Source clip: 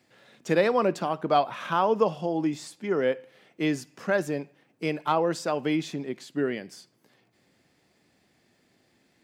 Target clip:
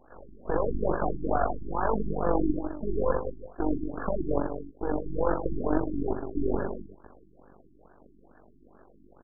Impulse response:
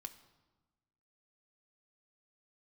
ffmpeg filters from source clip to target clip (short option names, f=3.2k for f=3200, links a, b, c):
-filter_complex "[0:a]alimiter=limit=-17.5dB:level=0:latency=1,asplit=2[a][b];[b]highpass=f=720:p=1,volume=26dB,asoftclip=type=tanh:threshold=-17.5dB[c];[a][c]amix=inputs=2:normalize=0,lowpass=f=1.1k:p=1,volume=-6dB,aecho=1:1:49|86|153|205|269:0.398|0.15|0.335|0.188|0.224,tremolo=f=48:d=0.75,aresample=16000,aeval=exprs='max(val(0),0)':c=same,aresample=44100,afftfilt=real='re*lt(b*sr/1024,370*pow(1800/370,0.5+0.5*sin(2*PI*2.3*pts/sr)))':imag='im*lt(b*sr/1024,370*pow(1800/370,0.5+0.5*sin(2*PI*2.3*pts/sr)))':win_size=1024:overlap=0.75,volume=5.5dB"